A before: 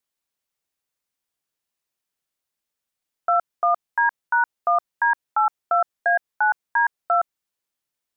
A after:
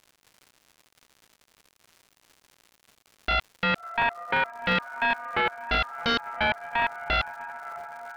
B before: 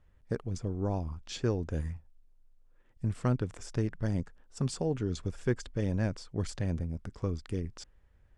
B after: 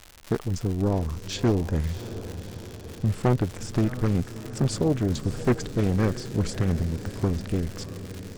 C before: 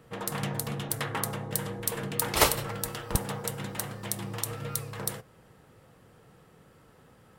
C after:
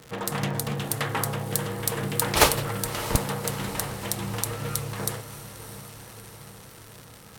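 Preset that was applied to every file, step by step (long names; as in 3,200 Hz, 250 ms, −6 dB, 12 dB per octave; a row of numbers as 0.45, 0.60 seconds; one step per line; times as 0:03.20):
feedback delay with all-pass diffusion 646 ms, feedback 63%, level −13 dB
surface crackle 190 per second −37 dBFS
highs frequency-modulated by the lows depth 0.73 ms
loudness normalisation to −27 LKFS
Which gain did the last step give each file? −4.0, +7.5, +4.5 decibels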